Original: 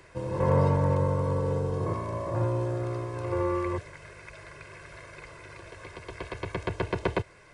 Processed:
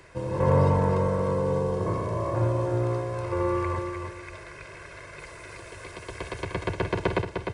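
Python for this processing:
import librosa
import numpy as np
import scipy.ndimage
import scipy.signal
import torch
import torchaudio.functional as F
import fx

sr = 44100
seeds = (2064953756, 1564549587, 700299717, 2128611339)

y = fx.high_shelf(x, sr, hz=8300.0, db=11.5, at=(5.19, 6.45))
y = fx.echo_feedback(y, sr, ms=303, feedback_pct=28, wet_db=-6.0)
y = F.gain(torch.from_numpy(y), 2.0).numpy()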